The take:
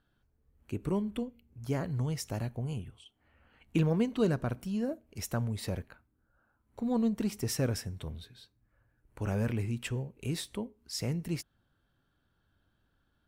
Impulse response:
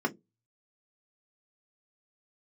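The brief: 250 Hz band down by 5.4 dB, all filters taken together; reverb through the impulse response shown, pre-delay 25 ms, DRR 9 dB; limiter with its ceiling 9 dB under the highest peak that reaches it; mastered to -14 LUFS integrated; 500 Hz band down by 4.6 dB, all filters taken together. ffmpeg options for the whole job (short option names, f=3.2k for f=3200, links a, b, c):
-filter_complex "[0:a]equalizer=f=250:t=o:g=-6.5,equalizer=f=500:t=o:g=-3.5,alimiter=level_in=5dB:limit=-24dB:level=0:latency=1,volume=-5dB,asplit=2[a][b];[1:a]atrim=start_sample=2205,adelay=25[c];[b][c]afir=irnorm=-1:irlink=0,volume=-17.5dB[d];[a][d]amix=inputs=2:normalize=0,volume=25dB"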